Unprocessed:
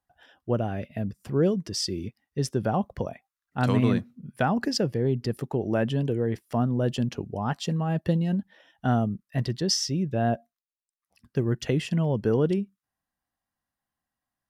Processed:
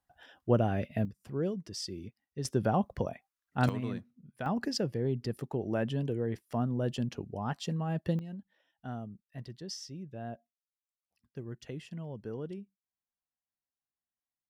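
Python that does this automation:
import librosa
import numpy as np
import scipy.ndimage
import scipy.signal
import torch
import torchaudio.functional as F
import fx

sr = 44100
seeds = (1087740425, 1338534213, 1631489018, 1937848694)

y = fx.gain(x, sr, db=fx.steps((0.0, 0.0), (1.05, -10.0), (2.45, -2.5), (3.69, -13.5), (4.46, -6.5), (8.19, -16.5)))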